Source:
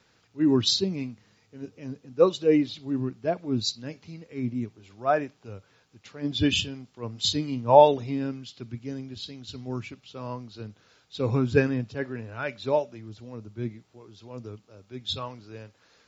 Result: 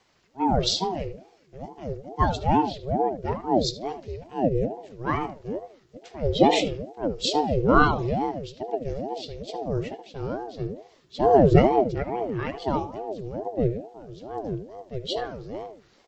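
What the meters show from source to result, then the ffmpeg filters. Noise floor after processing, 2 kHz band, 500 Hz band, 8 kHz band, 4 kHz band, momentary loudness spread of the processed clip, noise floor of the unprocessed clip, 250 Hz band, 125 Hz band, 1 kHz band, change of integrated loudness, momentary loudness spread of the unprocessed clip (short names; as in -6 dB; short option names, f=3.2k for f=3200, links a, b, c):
-59 dBFS, +3.5 dB, +1.5 dB, n/a, -1.5 dB, 17 LU, -64 dBFS, +1.5 dB, +3.5 dB, +4.5 dB, +0.5 dB, 21 LU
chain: -filter_complex "[0:a]asubboost=boost=5.5:cutoff=210,asplit=2[a][b];[b]adelay=76,lowpass=f=1.7k:p=1,volume=-9dB,asplit=2[c][d];[d]adelay=76,lowpass=f=1.7k:p=1,volume=0.31,asplit=2[e][f];[f]adelay=76,lowpass=f=1.7k:p=1,volume=0.31,asplit=2[g][h];[h]adelay=76,lowpass=f=1.7k:p=1,volume=0.31[i];[a][c][e][g][i]amix=inputs=5:normalize=0,aeval=exprs='val(0)*sin(2*PI*420*n/s+420*0.45/2.3*sin(2*PI*2.3*n/s))':c=same,volume=1.5dB"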